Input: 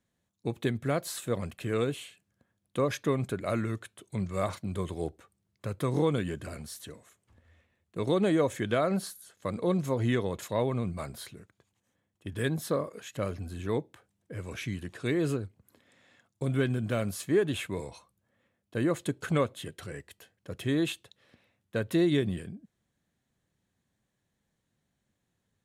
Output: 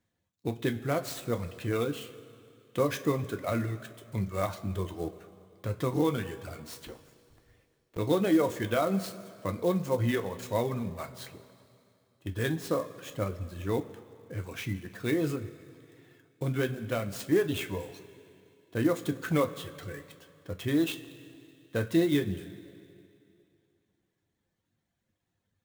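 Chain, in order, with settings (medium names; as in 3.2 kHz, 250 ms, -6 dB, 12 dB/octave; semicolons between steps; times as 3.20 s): 6.78–7.98 s: cycle switcher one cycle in 3, inverted; reverb removal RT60 1.2 s; two-slope reverb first 0.2 s, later 2.6 s, from -18 dB, DRR 5 dB; resampled via 22.05 kHz; sampling jitter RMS 0.021 ms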